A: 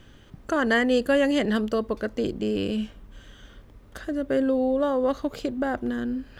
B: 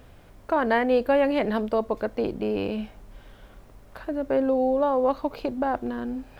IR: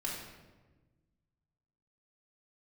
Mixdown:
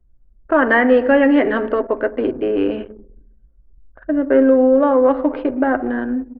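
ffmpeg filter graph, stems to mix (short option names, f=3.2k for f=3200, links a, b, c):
-filter_complex "[0:a]highpass=f=260:w=0.5412,highpass=f=260:w=1.3066,volume=3dB,asplit=2[a][b];[b]volume=-13dB[c];[1:a]highshelf=f=4.3k:g=7,adelay=9.6,volume=-7.5dB,asplit=3[d][e][f];[e]volume=-5dB[g];[f]apad=whole_len=281999[h];[a][h]sidechaingate=range=-18dB:threshold=-47dB:ratio=16:detection=peak[i];[2:a]atrim=start_sample=2205[j];[c][g]amix=inputs=2:normalize=0[k];[k][j]afir=irnorm=-1:irlink=0[l];[i][d][l]amix=inputs=3:normalize=0,anlmdn=3.98,acontrast=27,lowpass=f=2.2k:w=0.5412,lowpass=f=2.2k:w=1.3066"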